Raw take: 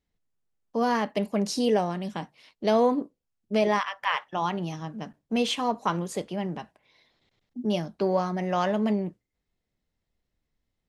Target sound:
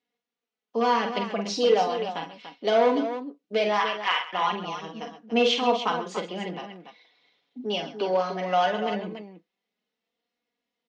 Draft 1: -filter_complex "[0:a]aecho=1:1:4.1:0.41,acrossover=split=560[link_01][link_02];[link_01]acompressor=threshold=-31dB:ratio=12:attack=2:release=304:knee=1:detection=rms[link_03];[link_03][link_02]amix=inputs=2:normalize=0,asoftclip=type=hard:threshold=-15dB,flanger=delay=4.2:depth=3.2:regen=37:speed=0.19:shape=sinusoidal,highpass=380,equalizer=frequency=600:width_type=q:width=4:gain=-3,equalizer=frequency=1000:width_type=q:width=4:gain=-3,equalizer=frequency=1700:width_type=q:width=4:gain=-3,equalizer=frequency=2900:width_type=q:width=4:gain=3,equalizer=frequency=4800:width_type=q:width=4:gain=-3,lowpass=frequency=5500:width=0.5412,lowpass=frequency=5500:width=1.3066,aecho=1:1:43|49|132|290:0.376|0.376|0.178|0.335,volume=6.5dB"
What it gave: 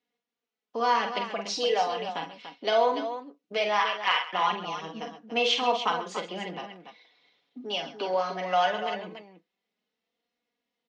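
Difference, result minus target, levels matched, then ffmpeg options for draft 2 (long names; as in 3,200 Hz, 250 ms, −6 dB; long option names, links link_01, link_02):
downward compressor: peak gain reduction +14.5 dB
-af "aecho=1:1:4.1:0.41,asoftclip=type=hard:threshold=-15dB,flanger=delay=4.2:depth=3.2:regen=37:speed=0.19:shape=sinusoidal,highpass=380,equalizer=frequency=600:width_type=q:width=4:gain=-3,equalizer=frequency=1000:width_type=q:width=4:gain=-3,equalizer=frequency=1700:width_type=q:width=4:gain=-3,equalizer=frequency=2900:width_type=q:width=4:gain=3,equalizer=frequency=4800:width_type=q:width=4:gain=-3,lowpass=frequency=5500:width=0.5412,lowpass=frequency=5500:width=1.3066,aecho=1:1:43|49|132|290:0.376|0.376|0.178|0.335,volume=6.5dB"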